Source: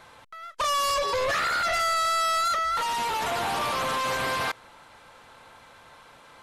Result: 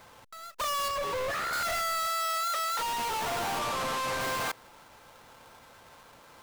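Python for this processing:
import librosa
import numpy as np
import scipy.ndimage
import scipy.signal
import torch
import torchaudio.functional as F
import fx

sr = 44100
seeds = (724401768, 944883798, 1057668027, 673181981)

y = fx.halfwave_hold(x, sr)
y = fx.high_shelf(y, sr, hz=3500.0, db=-8.5, at=(0.88, 1.53))
y = fx.highpass(y, sr, hz=330.0, slope=24, at=(2.07, 2.79))
y = fx.resample_linear(y, sr, factor=2, at=(3.59, 4.21))
y = y * 10.0 ** (-7.0 / 20.0)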